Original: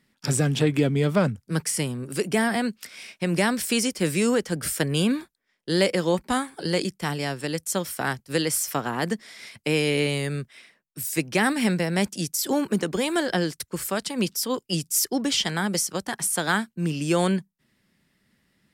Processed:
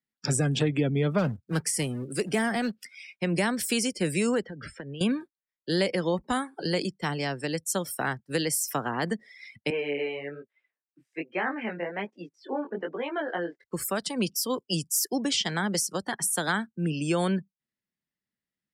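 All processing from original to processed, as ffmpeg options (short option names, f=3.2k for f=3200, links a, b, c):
-filter_complex "[0:a]asettb=1/sr,asplit=3[a][b][c];[a]atrim=end=1.184[d];[b]atrim=start=1.18:end=2.8,asetpts=PTS-STARTPTS,afade=t=in:d=0.004:c=qsin,afade=t=out:st=1.616:d=0.004:c=qsin,bandreject=f=1k:w=15,acrusher=bits=3:mode=log:mix=0:aa=0.000001[e];[c]atrim=start=2.796[f];[d][e]acrossfade=d=0.004:c1=hsin:c2=qsin[g];[g][f]acrossfade=d=0.004:c1=qsin:c2=hsin,asettb=1/sr,asplit=3[h][i][j];[h]atrim=end=4.424[k];[i]atrim=start=4.42:end=5.01,asetpts=PTS-STARTPTS,afade=t=in:d=0.004:c=qsin,afade=t=out:st=0.586:d=0.004:c=qsin,lowpass=3.7k,acompressor=threshold=-32dB:ratio=20:attack=3.2:release=140:knee=1:detection=peak[l];[j]atrim=start=5.006[m];[k][l]acrossfade=d=0.004:c1=hsin:c2=qsin[n];[n][m]acrossfade=d=0.004:c1=qsin:c2=hsin,asettb=1/sr,asplit=3[o][p][q];[o]atrim=end=9.704[r];[p]atrim=start=9.7:end=13.64,asetpts=PTS-STARTPTS,afade=t=in:d=0.004:c=qsin,afade=t=out:st=3.936:d=0.004:c=qsin,highpass=360,lowpass=2.3k,flanger=delay=17:depth=6.5:speed=1.2[s];[q]atrim=start=13.636[t];[r][s]acrossfade=d=0.004:c1=hsin:c2=qsin[u];[u][t]acrossfade=d=0.004:c1=qsin:c2=hsin,acrossover=split=190[v][w];[w]acompressor=threshold=-25dB:ratio=2[x];[v][x]amix=inputs=2:normalize=0,afftdn=nr=25:nf=-40,lowshelf=f=240:g=-3.5"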